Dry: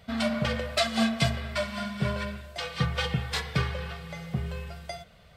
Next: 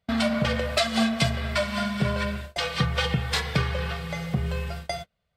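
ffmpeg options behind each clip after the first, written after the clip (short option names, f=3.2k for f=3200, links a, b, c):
-af "agate=range=-30dB:threshold=-42dB:ratio=16:detection=peak,acompressor=threshold=-31dB:ratio=2,volume=7.5dB"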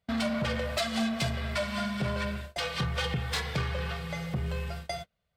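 -af "asoftclip=type=tanh:threshold=-20.5dB,volume=-3dB"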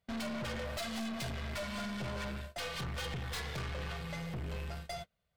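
-af "aeval=exprs='(tanh(56.2*val(0)+0.25)-tanh(0.25))/56.2':c=same,volume=-1.5dB"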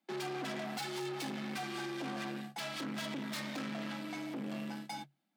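-af "afreqshift=140,volume=-1dB"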